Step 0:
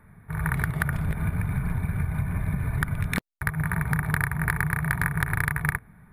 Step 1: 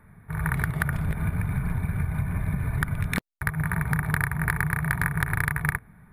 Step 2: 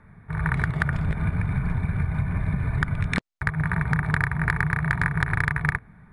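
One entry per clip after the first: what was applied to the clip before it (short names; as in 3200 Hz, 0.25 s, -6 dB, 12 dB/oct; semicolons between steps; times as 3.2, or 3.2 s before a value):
nothing audible
LPF 7500 Hz 24 dB/oct; gain +2 dB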